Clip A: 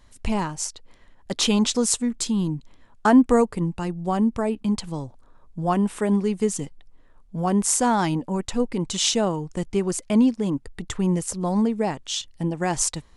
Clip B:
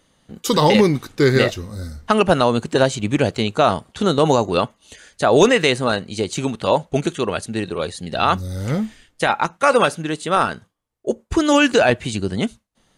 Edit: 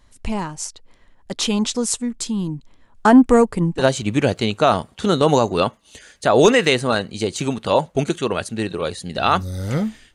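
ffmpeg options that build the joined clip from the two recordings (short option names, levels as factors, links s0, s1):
-filter_complex "[0:a]asettb=1/sr,asplit=3[s0][s1][s2];[s0]atrim=end=2.954[s3];[s1]atrim=start=2.95:end=3.85,asetpts=PTS-STARTPTS,afade=t=in:d=0.004:c=qsin,afade=t=out:st=0.896:d=0.004:c=qsin,acontrast=38[s4];[s2]atrim=start=3.846[s5];[s3][s4]acrossfade=d=0.004:c1=hsin:c2=qsin[s6];[s6][s5]acrossfade=d=0.004:c1=qsin:c2=hsin,apad=whole_dur=10.14,atrim=end=10.14,atrim=end=3.85,asetpts=PTS-STARTPTS[s7];[1:a]atrim=start=2.72:end=9.11,asetpts=PTS-STARTPTS[s8];[s7][s8]acrossfade=d=0.1:c1=tri:c2=tri"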